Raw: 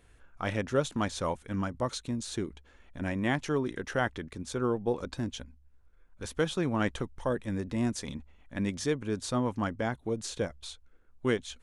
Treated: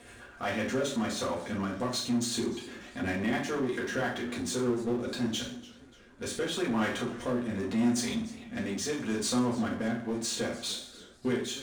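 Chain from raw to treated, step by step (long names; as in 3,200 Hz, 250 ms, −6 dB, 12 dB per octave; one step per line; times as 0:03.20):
high-pass filter 340 Hz 6 dB per octave
downward compressor 2 to 1, threshold −40 dBFS, peak gain reduction 9.5 dB
rotating-speaker cabinet horn 8 Hz, later 0.8 Hz, at 0:03.16
downsampling to 22,050 Hz
convolution reverb RT60 0.45 s, pre-delay 4 ms, DRR −4.5 dB
power curve on the samples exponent 0.7
feedback echo with a swinging delay time 296 ms, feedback 42%, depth 154 cents, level −18.5 dB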